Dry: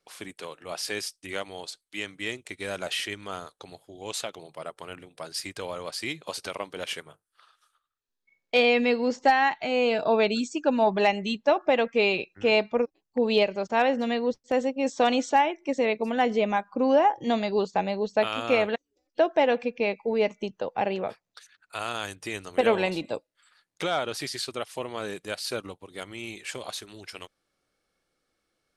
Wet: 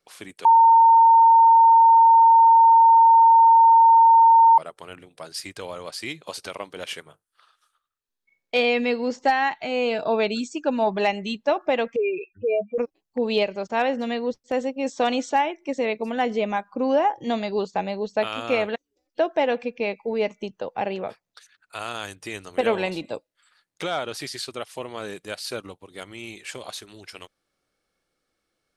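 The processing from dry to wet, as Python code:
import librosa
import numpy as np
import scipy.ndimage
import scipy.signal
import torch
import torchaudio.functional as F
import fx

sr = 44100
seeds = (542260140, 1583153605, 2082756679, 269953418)

y = fx.spec_expand(x, sr, power=3.9, at=(11.96, 12.78))
y = fx.edit(y, sr, fx.bleep(start_s=0.45, length_s=4.13, hz=912.0, db=-10.0), tone=tone)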